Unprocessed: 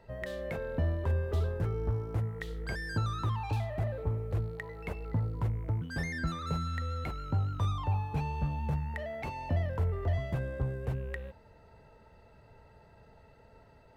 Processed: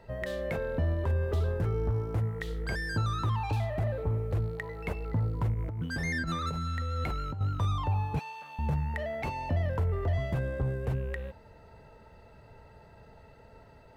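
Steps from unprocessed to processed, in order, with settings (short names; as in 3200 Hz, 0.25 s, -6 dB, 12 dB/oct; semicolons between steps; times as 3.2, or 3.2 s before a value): limiter -25.5 dBFS, peak gain reduction 3.5 dB; 5.54–7.41 negative-ratio compressor -36 dBFS, ratio -1; 8.19–8.59 Bessel high-pass 1300 Hz, order 2; gain +4 dB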